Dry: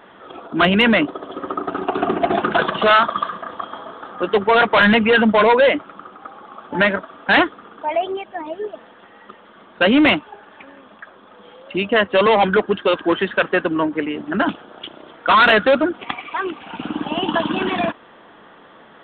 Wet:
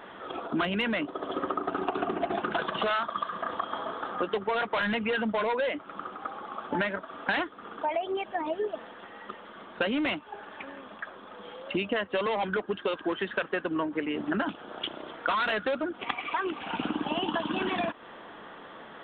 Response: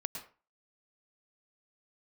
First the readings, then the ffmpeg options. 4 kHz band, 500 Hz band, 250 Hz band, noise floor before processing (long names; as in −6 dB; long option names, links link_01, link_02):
−12.5 dB, −12.5 dB, −12.0 dB, −46 dBFS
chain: -af "equalizer=frequency=140:width=0.57:gain=-2,acompressor=threshold=-26dB:ratio=12"